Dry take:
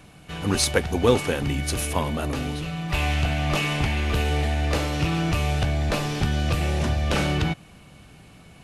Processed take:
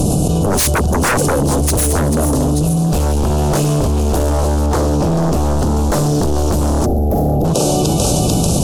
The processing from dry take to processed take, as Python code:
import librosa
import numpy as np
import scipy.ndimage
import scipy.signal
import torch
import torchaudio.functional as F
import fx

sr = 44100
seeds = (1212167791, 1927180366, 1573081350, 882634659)

y = fx.echo_thinned(x, sr, ms=442, feedback_pct=55, hz=760.0, wet_db=-9)
y = np.clip(y, -10.0 ** (-16.0 / 20.0), 10.0 ** (-16.0 / 20.0))
y = scipy.signal.sosfilt(scipy.signal.cheby1(2, 1.0, [540.0, 7000.0], 'bandstop', fs=sr, output='sos'), y)
y = fx.peak_eq(y, sr, hz=2400.0, db=12.5, octaves=0.53)
y = fx.fold_sine(y, sr, drive_db=12, ceiling_db=-12.5)
y = fx.high_shelf(y, sr, hz=4800.0, db=-6.5, at=(4.66, 5.59))
y = fx.spec_box(y, sr, start_s=6.86, length_s=0.59, low_hz=860.0, high_hz=11000.0, gain_db=-20)
y = fx.env_flatten(y, sr, amount_pct=100)